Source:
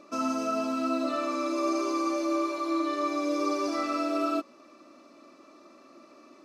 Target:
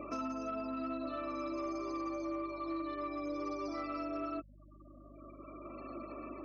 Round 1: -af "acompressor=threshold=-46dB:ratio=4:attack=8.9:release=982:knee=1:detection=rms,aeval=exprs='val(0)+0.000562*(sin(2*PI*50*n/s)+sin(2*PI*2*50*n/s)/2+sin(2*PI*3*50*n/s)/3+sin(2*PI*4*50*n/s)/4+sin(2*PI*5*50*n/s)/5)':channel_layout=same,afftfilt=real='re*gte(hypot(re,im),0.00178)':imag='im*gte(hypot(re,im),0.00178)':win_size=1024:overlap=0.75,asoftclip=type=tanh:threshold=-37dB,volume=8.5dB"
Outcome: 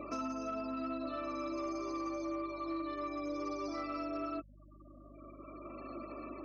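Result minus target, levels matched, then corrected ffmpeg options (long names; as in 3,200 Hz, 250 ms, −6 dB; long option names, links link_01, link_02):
8,000 Hz band +4.0 dB
-af "acompressor=threshold=-46dB:ratio=4:attack=8.9:release=982:knee=1:detection=rms,highshelf=frequency=7700:gain=-6,aeval=exprs='val(0)+0.000562*(sin(2*PI*50*n/s)+sin(2*PI*2*50*n/s)/2+sin(2*PI*3*50*n/s)/3+sin(2*PI*4*50*n/s)/4+sin(2*PI*5*50*n/s)/5)':channel_layout=same,afftfilt=real='re*gte(hypot(re,im),0.00178)':imag='im*gte(hypot(re,im),0.00178)':win_size=1024:overlap=0.75,asoftclip=type=tanh:threshold=-37dB,volume=8.5dB"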